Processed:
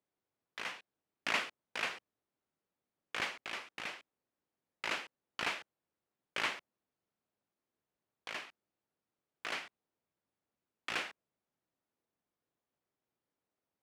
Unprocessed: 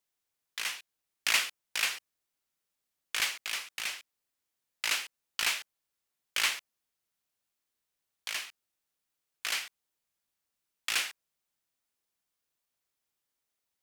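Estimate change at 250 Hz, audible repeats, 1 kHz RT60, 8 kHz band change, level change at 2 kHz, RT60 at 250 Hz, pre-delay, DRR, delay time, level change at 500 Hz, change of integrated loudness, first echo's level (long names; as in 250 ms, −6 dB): +7.0 dB, no echo audible, no reverb audible, −16.5 dB, −5.5 dB, no reverb audible, no reverb audible, no reverb audible, no echo audible, +4.5 dB, −7.5 dB, no echo audible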